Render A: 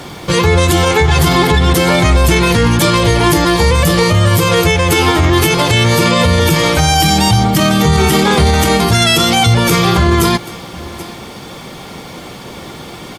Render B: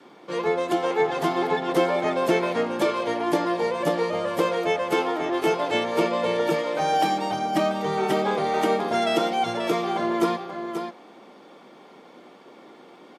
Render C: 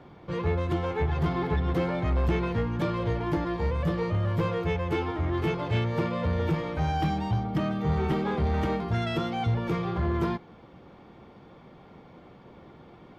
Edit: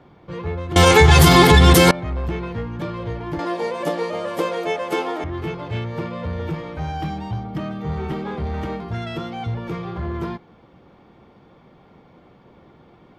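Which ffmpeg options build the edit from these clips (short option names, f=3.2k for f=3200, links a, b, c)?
-filter_complex "[2:a]asplit=3[a][b][c];[a]atrim=end=0.762[d];[0:a]atrim=start=0.758:end=1.912[e];[b]atrim=start=1.908:end=3.392[f];[1:a]atrim=start=3.388:end=5.242[g];[c]atrim=start=5.238[h];[d][e]acrossfade=d=0.004:c1=hsin:c2=hsin[i];[i][f]acrossfade=d=0.004:c1=hsin:c2=hsin[j];[j][g]acrossfade=d=0.004:c1=hsin:c2=hsin[k];[k][h]acrossfade=d=0.004:c1=hsin:c2=hsin"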